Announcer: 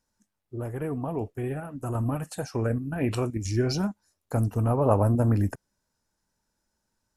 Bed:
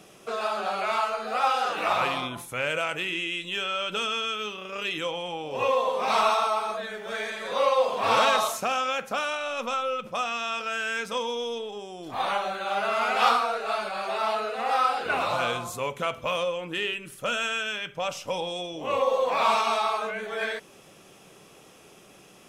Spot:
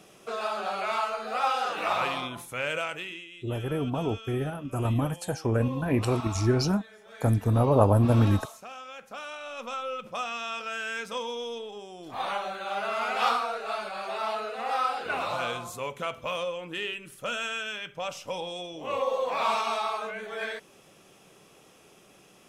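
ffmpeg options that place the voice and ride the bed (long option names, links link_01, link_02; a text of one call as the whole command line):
ffmpeg -i stem1.wav -i stem2.wav -filter_complex "[0:a]adelay=2900,volume=1.5dB[link_01];[1:a]volume=9.5dB,afade=type=out:start_time=2.78:duration=0.49:silence=0.211349,afade=type=in:start_time=8.89:duration=1.21:silence=0.251189[link_02];[link_01][link_02]amix=inputs=2:normalize=0" out.wav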